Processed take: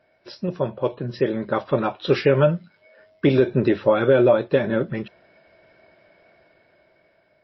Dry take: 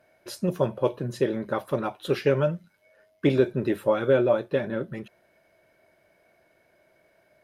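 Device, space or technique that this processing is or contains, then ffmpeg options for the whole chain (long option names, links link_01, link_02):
low-bitrate web radio: -af "dynaudnorm=framelen=450:gausssize=7:maxgain=15dB,alimiter=limit=-6.5dB:level=0:latency=1:release=111" -ar 16000 -c:a libmp3lame -b:a 24k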